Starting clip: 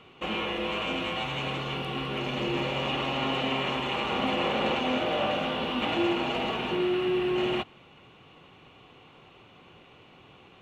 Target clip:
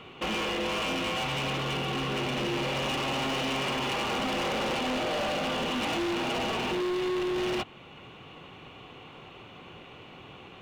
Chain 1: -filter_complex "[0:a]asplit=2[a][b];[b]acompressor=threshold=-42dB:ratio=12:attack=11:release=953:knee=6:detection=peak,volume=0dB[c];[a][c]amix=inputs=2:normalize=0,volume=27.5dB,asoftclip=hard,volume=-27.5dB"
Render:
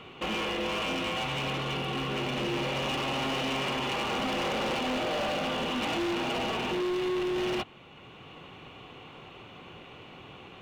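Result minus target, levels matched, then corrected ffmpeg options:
compressor: peak gain reduction +10 dB
-filter_complex "[0:a]asplit=2[a][b];[b]acompressor=threshold=-31dB:ratio=12:attack=11:release=953:knee=6:detection=peak,volume=0dB[c];[a][c]amix=inputs=2:normalize=0,volume=27.5dB,asoftclip=hard,volume=-27.5dB"

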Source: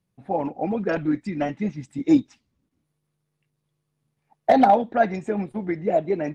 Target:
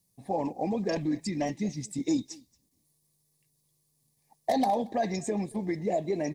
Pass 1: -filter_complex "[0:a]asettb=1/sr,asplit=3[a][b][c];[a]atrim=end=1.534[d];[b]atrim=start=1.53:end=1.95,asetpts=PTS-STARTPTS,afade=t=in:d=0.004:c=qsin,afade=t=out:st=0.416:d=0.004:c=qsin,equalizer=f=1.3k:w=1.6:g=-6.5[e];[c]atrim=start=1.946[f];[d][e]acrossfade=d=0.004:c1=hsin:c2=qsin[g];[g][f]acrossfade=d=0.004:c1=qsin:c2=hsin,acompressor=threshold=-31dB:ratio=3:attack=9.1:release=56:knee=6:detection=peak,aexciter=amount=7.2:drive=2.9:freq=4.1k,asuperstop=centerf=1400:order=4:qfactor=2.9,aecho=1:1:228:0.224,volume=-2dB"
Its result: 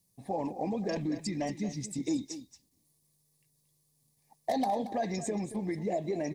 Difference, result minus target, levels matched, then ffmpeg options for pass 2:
echo-to-direct +12 dB; compressor: peak gain reduction +4 dB
-filter_complex "[0:a]asettb=1/sr,asplit=3[a][b][c];[a]atrim=end=1.534[d];[b]atrim=start=1.53:end=1.95,asetpts=PTS-STARTPTS,afade=t=in:d=0.004:c=qsin,afade=t=out:st=0.416:d=0.004:c=qsin,equalizer=f=1.3k:w=1.6:g=-6.5[e];[c]atrim=start=1.946[f];[d][e]acrossfade=d=0.004:c1=hsin:c2=qsin[g];[g][f]acrossfade=d=0.004:c1=qsin:c2=hsin,acompressor=threshold=-25dB:ratio=3:attack=9.1:release=56:knee=6:detection=peak,aexciter=amount=7.2:drive=2.9:freq=4.1k,asuperstop=centerf=1400:order=4:qfactor=2.9,aecho=1:1:228:0.0562,volume=-2dB"

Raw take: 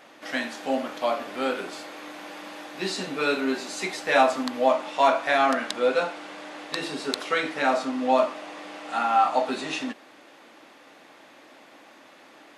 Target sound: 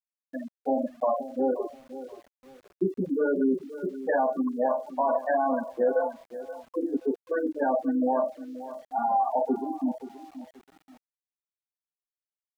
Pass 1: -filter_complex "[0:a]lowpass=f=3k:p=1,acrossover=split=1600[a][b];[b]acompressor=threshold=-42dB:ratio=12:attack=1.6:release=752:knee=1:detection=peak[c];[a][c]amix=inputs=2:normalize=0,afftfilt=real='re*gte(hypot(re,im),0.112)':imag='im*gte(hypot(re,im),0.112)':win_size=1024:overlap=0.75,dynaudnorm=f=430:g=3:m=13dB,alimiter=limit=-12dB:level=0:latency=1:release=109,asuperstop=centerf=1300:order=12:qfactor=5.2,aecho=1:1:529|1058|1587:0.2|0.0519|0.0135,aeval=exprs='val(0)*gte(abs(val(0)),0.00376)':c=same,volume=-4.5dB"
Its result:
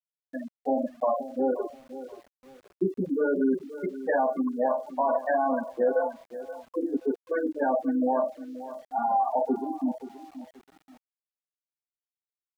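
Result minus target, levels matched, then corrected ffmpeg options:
compressor: peak gain reduction -6 dB
-filter_complex "[0:a]lowpass=f=3k:p=1,acrossover=split=1600[a][b];[b]acompressor=threshold=-48.5dB:ratio=12:attack=1.6:release=752:knee=1:detection=peak[c];[a][c]amix=inputs=2:normalize=0,afftfilt=real='re*gte(hypot(re,im),0.112)':imag='im*gte(hypot(re,im),0.112)':win_size=1024:overlap=0.75,dynaudnorm=f=430:g=3:m=13dB,alimiter=limit=-12dB:level=0:latency=1:release=109,asuperstop=centerf=1300:order=12:qfactor=5.2,aecho=1:1:529|1058|1587:0.2|0.0519|0.0135,aeval=exprs='val(0)*gte(abs(val(0)),0.00376)':c=same,volume=-4.5dB"

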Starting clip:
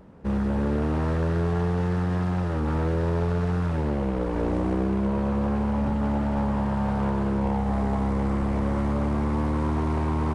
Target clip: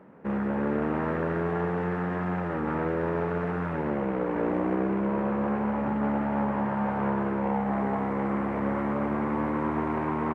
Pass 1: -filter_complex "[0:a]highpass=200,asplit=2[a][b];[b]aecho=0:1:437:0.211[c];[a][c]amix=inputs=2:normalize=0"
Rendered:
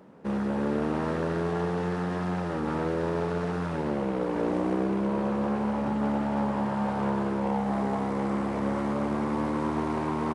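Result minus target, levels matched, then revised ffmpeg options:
8000 Hz band +15.5 dB
-filter_complex "[0:a]highpass=200,highshelf=f=3.1k:t=q:w=1.5:g=-13.5,asplit=2[a][b];[b]aecho=0:1:437:0.211[c];[a][c]amix=inputs=2:normalize=0"

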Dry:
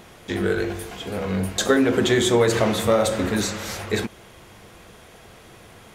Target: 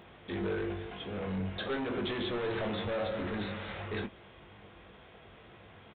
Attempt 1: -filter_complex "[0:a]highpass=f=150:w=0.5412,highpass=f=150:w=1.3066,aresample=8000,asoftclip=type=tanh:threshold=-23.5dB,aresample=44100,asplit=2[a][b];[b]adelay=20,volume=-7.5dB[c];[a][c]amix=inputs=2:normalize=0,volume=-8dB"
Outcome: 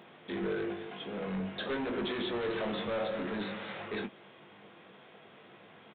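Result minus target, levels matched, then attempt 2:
125 Hz band -5.0 dB
-filter_complex "[0:a]highpass=f=39:w=0.5412,highpass=f=39:w=1.3066,aresample=8000,asoftclip=type=tanh:threshold=-23.5dB,aresample=44100,asplit=2[a][b];[b]adelay=20,volume=-7.5dB[c];[a][c]amix=inputs=2:normalize=0,volume=-8dB"

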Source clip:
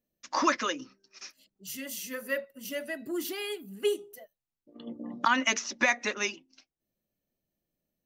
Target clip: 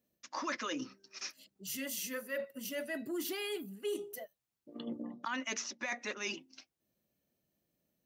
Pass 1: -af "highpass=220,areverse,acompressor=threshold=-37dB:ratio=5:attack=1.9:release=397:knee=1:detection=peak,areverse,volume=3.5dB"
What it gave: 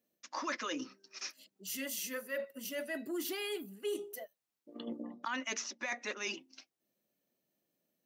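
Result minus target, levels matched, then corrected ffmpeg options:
125 Hz band -4.0 dB
-af "highpass=68,areverse,acompressor=threshold=-37dB:ratio=5:attack=1.9:release=397:knee=1:detection=peak,areverse,volume=3.5dB"

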